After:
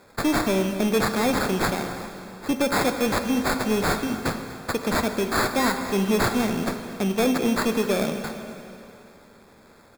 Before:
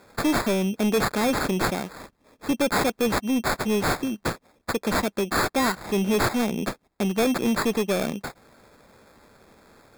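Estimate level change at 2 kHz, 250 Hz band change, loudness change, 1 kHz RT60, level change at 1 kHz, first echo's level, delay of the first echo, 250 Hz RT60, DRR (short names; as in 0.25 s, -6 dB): +1.0 dB, +1.0 dB, +0.5 dB, 2.9 s, +1.0 dB, -18.0 dB, 0.244 s, 2.9 s, 6.0 dB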